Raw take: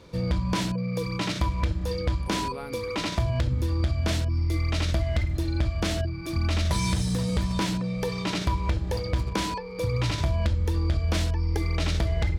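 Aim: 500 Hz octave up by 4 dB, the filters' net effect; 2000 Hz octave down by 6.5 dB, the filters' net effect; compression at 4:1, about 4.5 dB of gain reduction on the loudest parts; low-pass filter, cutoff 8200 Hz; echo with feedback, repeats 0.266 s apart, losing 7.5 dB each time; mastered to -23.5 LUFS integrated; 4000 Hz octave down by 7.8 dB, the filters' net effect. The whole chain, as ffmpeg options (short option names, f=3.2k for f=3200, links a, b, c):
-af "lowpass=8.2k,equalizer=f=500:t=o:g=5,equalizer=f=2k:t=o:g=-6,equalizer=f=4k:t=o:g=-8,acompressor=threshold=-25dB:ratio=4,aecho=1:1:266|532|798|1064|1330:0.422|0.177|0.0744|0.0312|0.0131,volume=5.5dB"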